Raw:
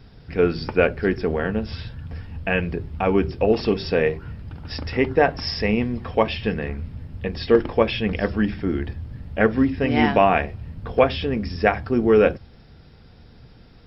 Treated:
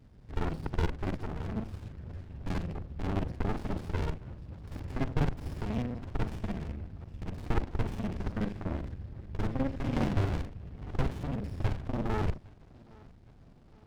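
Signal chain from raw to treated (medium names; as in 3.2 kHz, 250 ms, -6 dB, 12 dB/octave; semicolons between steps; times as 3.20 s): time reversed locally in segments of 41 ms; filtered feedback delay 812 ms, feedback 46%, low-pass 4.9 kHz, level -24 dB; sliding maximum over 65 samples; trim -8 dB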